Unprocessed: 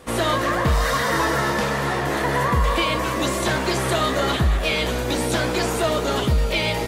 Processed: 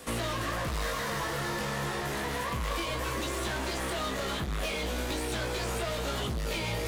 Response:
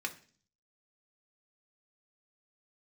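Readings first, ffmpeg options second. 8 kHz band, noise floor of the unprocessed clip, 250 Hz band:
-8.0 dB, -25 dBFS, -11.5 dB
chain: -filter_complex "[0:a]asoftclip=type=tanh:threshold=-19dB,areverse,acompressor=mode=upward:threshold=-25dB:ratio=2.5,areverse,volume=22.5dB,asoftclip=hard,volume=-22.5dB,flanger=delay=17.5:depth=2.7:speed=0.33,acrossover=split=130|1400|4000[a][b][c][d];[a]acompressor=threshold=-34dB:ratio=4[e];[b]acompressor=threshold=-34dB:ratio=4[f];[c]acompressor=threshold=-42dB:ratio=4[g];[d]acompressor=threshold=-52dB:ratio=4[h];[e][f][g][h]amix=inputs=4:normalize=0,highshelf=f=3.7k:g=9.5"

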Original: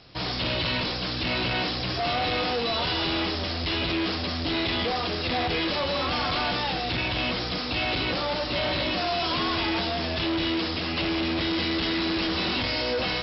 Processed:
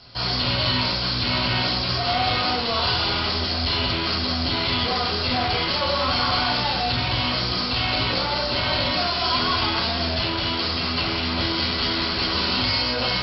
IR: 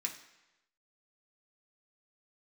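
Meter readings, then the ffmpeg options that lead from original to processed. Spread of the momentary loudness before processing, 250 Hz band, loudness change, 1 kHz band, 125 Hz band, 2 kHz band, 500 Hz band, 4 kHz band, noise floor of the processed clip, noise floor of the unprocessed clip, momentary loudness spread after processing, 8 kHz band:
2 LU, 0.0 dB, +4.5 dB, +5.0 dB, +5.5 dB, +3.0 dB, +1.0 dB, +6.0 dB, -25 dBFS, -30 dBFS, 2 LU, n/a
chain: -filter_complex "[1:a]atrim=start_sample=2205,afade=t=out:st=0.18:d=0.01,atrim=end_sample=8379,asetrate=25137,aresample=44100[a];[0:a][a]afir=irnorm=-1:irlink=0"

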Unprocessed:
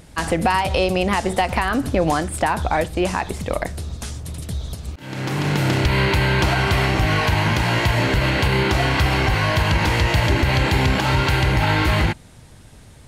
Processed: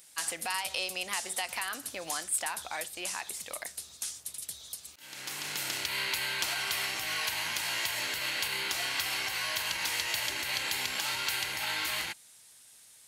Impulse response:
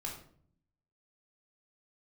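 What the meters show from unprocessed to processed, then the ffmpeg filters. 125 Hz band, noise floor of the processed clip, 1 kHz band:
-35.5 dB, -56 dBFS, -17.5 dB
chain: -af "aderivative"

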